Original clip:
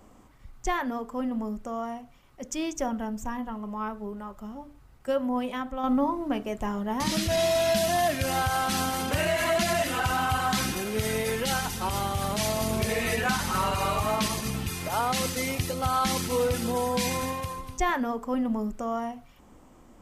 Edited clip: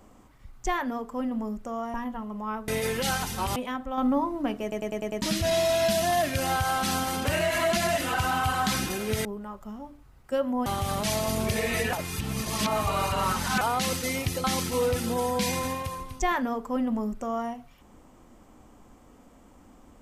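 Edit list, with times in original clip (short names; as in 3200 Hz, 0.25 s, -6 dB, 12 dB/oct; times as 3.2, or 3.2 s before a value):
1.94–3.27 cut
4.01–5.42 swap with 11.11–11.99
6.48 stutter in place 0.10 s, 6 plays
13.26–14.94 reverse
15.77–16.02 cut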